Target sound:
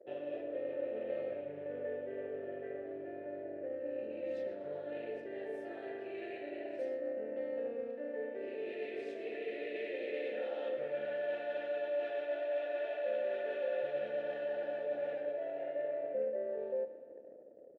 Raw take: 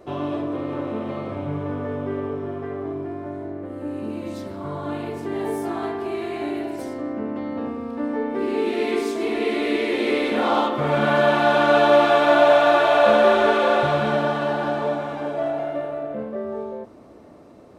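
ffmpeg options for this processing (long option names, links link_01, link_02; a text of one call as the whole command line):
ffmpeg -i in.wav -filter_complex "[0:a]acontrast=34,anlmdn=1,asplit=2[link_01][link_02];[link_02]aecho=0:1:124|248|372|496|620|744:0.178|0.107|0.064|0.0384|0.023|0.0138[link_03];[link_01][link_03]amix=inputs=2:normalize=0,tremolo=f=270:d=0.462,areverse,acompressor=threshold=-26dB:ratio=16,areverse,asplit=3[link_04][link_05][link_06];[link_04]bandpass=frequency=530:width_type=q:width=8,volume=0dB[link_07];[link_05]bandpass=frequency=1840:width_type=q:width=8,volume=-6dB[link_08];[link_06]bandpass=frequency=2480:width_type=q:width=8,volume=-9dB[link_09];[link_07][link_08][link_09]amix=inputs=3:normalize=0,volume=1dB" out.wav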